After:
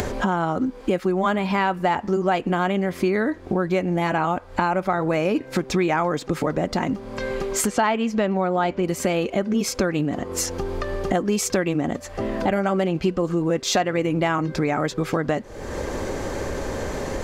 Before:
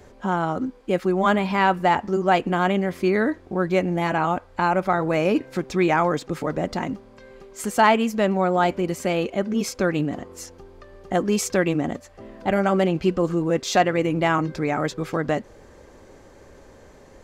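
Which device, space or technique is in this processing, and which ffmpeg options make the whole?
upward and downward compression: -filter_complex "[0:a]acompressor=mode=upward:threshold=-24dB:ratio=2.5,acompressor=threshold=-28dB:ratio=4,asettb=1/sr,asplit=3[link_01][link_02][link_03];[link_01]atrim=end=7.674[link_04];[link_02]atrim=start=7.67:end=8.83,asetpts=PTS-STARTPTS,afade=type=in:duration=0.004:curve=qsin,afade=type=out:start_time=1.156:duration=0.004:curve=qsin,lowpass=5400[link_05];[link_03]atrim=start=8.826[link_06];[link_04][link_05]acrossfade=duration=0.004:curve1=hsin:curve2=qsin[link_07];[link_07][link_06]acrossfade=duration=0.004:curve1=qsin:curve2=hsin,volume=8.5dB"

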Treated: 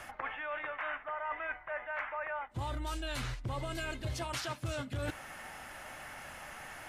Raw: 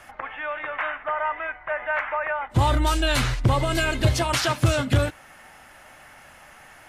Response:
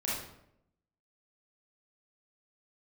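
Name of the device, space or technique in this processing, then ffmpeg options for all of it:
compression on the reversed sound: -af "areverse,acompressor=threshold=-36dB:ratio=10,areverse,volume=1dB"

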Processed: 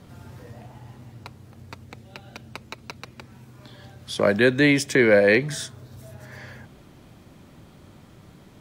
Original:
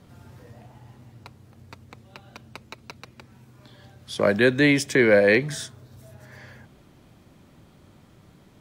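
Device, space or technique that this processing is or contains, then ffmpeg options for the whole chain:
parallel compression: -filter_complex "[0:a]asplit=2[link_01][link_02];[link_02]acompressor=threshold=-37dB:ratio=6,volume=-4dB[link_03];[link_01][link_03]amix=inputs=2:normalize=0,asettb=1/sr,asplit=3[link_04][link_05][link_06];[link_04]atrim=end=1.874[link_07];[link_05]atrim=start=1.87:end=2.48,asetpts=PTS-STARTPTS,afade=type=in:duration=0.004:curve=qsin,afade=type=out:start_time=0.606:duration=0.004:curve=qsin,equalizer=frequency=1100:width_type=o:width=0.27:gain=-8.5[link_08];[link_06]atrim=start=2.476[link_09];[link_07][link_08]acrossfade=duration=0.004:curve1=hsin:curve2=qsin[link_10];[link_10][link_09]acrossfade=duration=0.004:curve1=qsin:curve2=hsin"

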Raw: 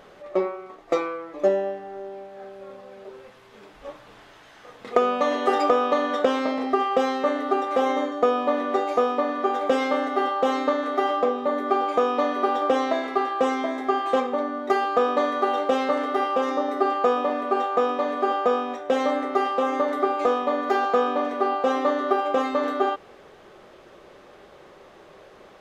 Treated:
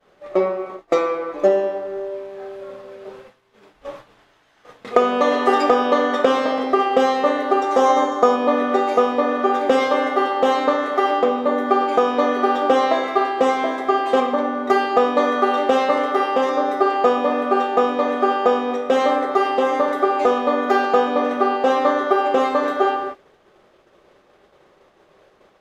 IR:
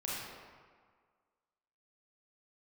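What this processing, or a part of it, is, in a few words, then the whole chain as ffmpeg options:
keyed gated reverb: -filter_complex "[0:a]agate=range=-33dB:threshold=-41dB:ratio=3:detection=peak,asettb=1/sr,asplit=3[link_01][link_02][link_03];[link_01]atrim=end=7.624[link_04];[link_02]atrim=start=7.62:end=8.36,asetpts=PTS-STARTPTS,afade=type=in:duration=0.004:curve=qsin,afade=type=out:start_time=0.736:duration=0.004:curve=qsin,equalizer=frequency=1000:width_type=o:width=0.67:gain=5,equalizer=frequency=2500:width_type=o:width=0.67:gain=-5,equalizer=frequency=6300:width_type=o:width=0.67:gain=9[link_05];[link_03]atrim=start=8.356[link_06];[link_04][link_05]acrossfade=duration=0.004:curve1=hsin:curve2=qsin[link_07];[link_07][link_06]acrossfade=duration=0.004:curve1=qsin:curve2=hsin,asplit=3[link_08][link_09][link_10];[1:a]atrim=start_sample=2205[link_11];[link_09][link_11]afir=irnorm=-1:irlink=0[link_12];[link_10]apad=whole_len=1129196[link_13];[link_12][link_13]sidechaingate=range=-33dB:threshold=-45dB:ratio=16:detection=peak,volume=-7dB[link_14];[link_08][link_14]amix=inputs=2:normalize=0,volume=2.5dB"

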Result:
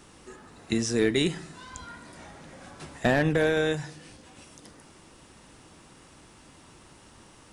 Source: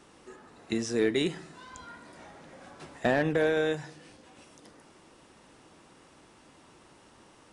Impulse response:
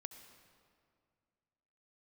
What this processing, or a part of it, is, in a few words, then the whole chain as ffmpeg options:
smiley-face EQ: -af "lowshelf=frequency=150:gain=8,equalizer=frequency=470:width_type=o:width=2.3:gain=-3,highshelf=frequency=6800:gain=6.5,volume=3.5dB"

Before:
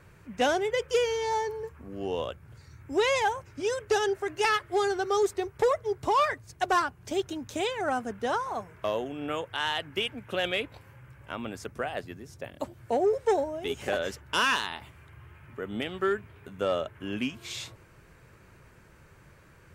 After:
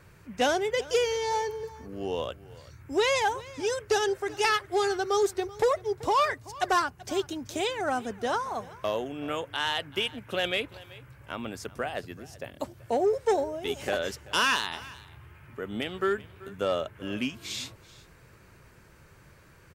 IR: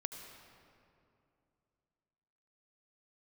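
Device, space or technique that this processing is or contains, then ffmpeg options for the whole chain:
presence and air boost: -af "equalizer=frequency=4700:width_type=o:width=0.8:gain=3.5,highshelf=frequency=11000:gain=6,aecho=1:1:383:0.1"

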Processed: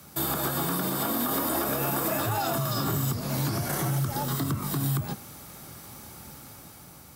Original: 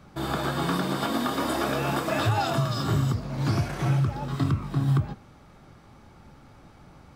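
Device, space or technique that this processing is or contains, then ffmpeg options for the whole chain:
FM broadcast chain: -filter_complex "[0:a]highpass=66,dynaudnorm=framelen=210:gausssize=9:maxgain=5dB,acrossover=split=120|1700|4100[link_01][link_02][link_03][link_04];[link_01]acompressor=threshold=-38dB:ratio=4[link_05];[link_02]acompressor=threshold=-21dB:ratio=4[link_06];[link_03]acompressor=threshold=-47dB:ratio=4[link_07];[link_04]acompressor=threshold=-52dB:ratio=4[link_08];[link_05][link_06][link_07][link_08]amix=inputs=4:normalize=0,aemphasis=mode=production:type=50fm,alimiter=limit=-19.5dB:level=0:latency=1:release=119,asoftclip=type=hard:threshold=-22dB,lowpass=frequency=15000:width=0.5412,lowpass=frequency=15000:width=1.3066,aemphasis=mode=production:type=50fm,asettb=1/sr,asplit=3[link_09][link_10][link_11];[link_09]atrim=end=3.554[link_12];[link_10]atrim=start=3.55:end=4.75,asetpts=PTS-STARTPTS,afade=type=in:duration=0.004:curve=qsin,afade=type=out:start_time=1.196:duration=0.004:curve=qsin,bandreject=frequency=2500:width=10[link_13];[link_11]atrim=start=4.746[link_14];[link_12][link_13]acrossfade=duration=0.004:curve1=hsin:curve2=qsin[link_15];[link_15][link_14]acrossfade=duration=0.004:curve1=qsin:curve2=hsin"

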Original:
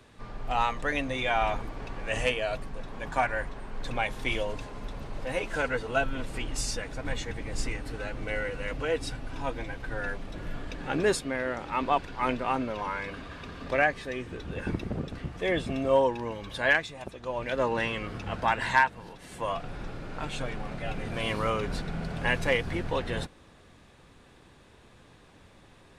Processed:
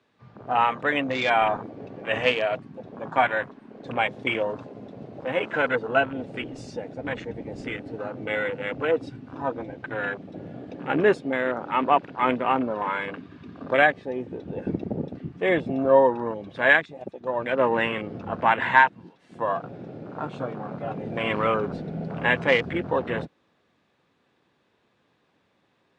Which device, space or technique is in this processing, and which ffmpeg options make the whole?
over-cleaned archive recording: -af "highpass=160,lowpass=5100,afwtdn=0.0158,volume=6dB"

